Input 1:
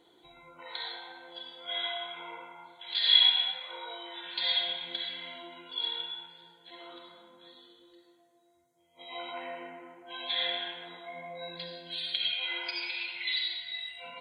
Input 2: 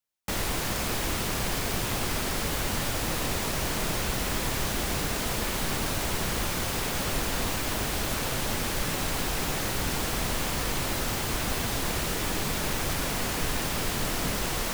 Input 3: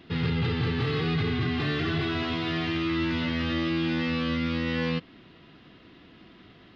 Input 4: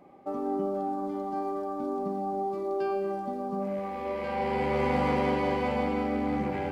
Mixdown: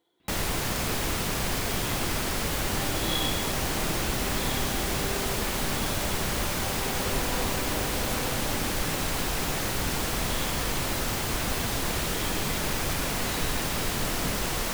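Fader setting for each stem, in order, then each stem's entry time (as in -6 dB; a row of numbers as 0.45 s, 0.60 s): -11.5 dB, +0.5 dB, -15.5 dB, -10.0 dB; 0.00 s, 0.00 s, 0.20 s, 2.30 s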